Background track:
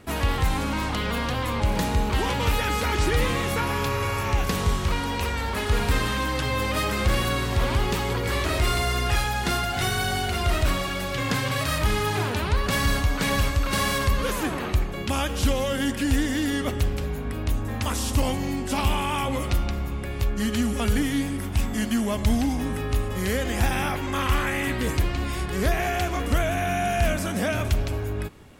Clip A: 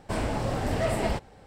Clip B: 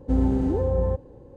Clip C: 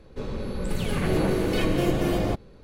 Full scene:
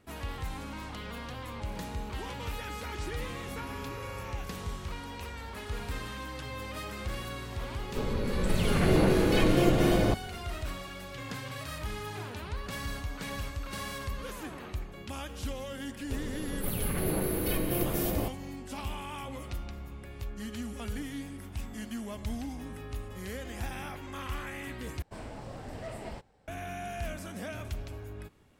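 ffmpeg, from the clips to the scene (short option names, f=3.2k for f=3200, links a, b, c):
-filter_complex "[3:a]asplit=2[a][b];[0:a]volume=-14dB[c];[2:a]acompressor=threshold=-33dB:ratio=6:attack=3.2:release=140:knee=1:detection=peak[d];[b]aexciter=amount=7.5:drive=8.3:freq=10k[e];[c]asplit=2[f][g];[f]atrim=end=25.024[h];[1:a]atrim=end=1.46,asetpts=PTS-STARTPTS,volume=-14dB[i];[g]atrim=start=26.476[j];[d]atrim=end=1.36,asetpts=PTS-STARTPTS,volume=-9.5dB,afade=t=in:d=0.004:c=hsin,afade=t=out:st=1.356:d=0.004:c=hsin,adelay=3400[k];[a]atrim=end=2.63,asetpts=PTS-STARTPTS,afade=t=in:d=0.004:c=hsin,afade=t=out:st=2.626:d=0.004:c=hsin,adelay=7790[l];[e]atrim=end=2.63,asetpts=PTS-STARTPTS,volume=-7.5dB,afade=t=in:d=0.004:c=hsin,afade=t=out:st=2.626:d=0.004:c=hsin,adelay=15930[m];[h][i]acrossfade=d=0.004:c1=hsin:c2=hsin[n];[n][j]acrossfade=d=0.004:c1=hsin:c2=hsin[o];[o][k][l][m]amix=inputs=4:normalize=0"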